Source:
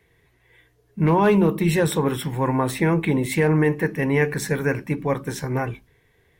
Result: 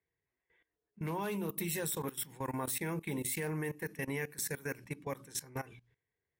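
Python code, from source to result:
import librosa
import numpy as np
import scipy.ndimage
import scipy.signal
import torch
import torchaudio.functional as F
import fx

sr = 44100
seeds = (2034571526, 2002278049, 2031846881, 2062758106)

y = scipy.signal.sosfilt(scipy.signal.butter(2, 50.0, 'highpass', fs=sr, output='sos'), x)
y = librosa.effects.preemphasis(y, coef=0.8, zi=[0.0])
y = fx.env_lowpass(y, sr, base_hz=1700.0, full_db=-31.0)
y = fx.high_shelf(y, sr, hz=9200.0, db=7.5)
y = fx.hum_notches(y, sr, base_hz=60, count=5)
y = fx.level_steps(y, sr, step_db=18)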